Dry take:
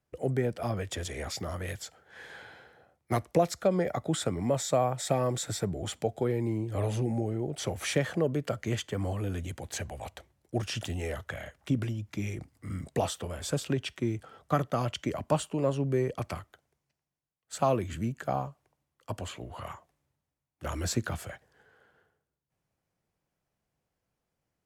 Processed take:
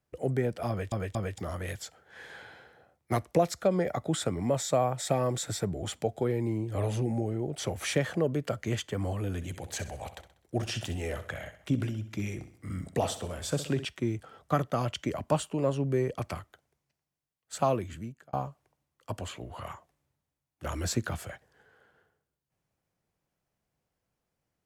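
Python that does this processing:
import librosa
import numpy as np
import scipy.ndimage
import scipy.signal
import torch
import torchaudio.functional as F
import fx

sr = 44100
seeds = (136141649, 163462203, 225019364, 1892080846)

y = fx.echo_feedback(x, sr, ms=64, feedback_pct=46, wet_db=-13.0, at=(9.35, 13.85))
y = fx.edit(y, sr, fx.stutter_over(start_s=0.69, slice_s=0.23, count=3),
    fx.fade_out_span(start_s=17.64, length_s=0.69), tone=tone)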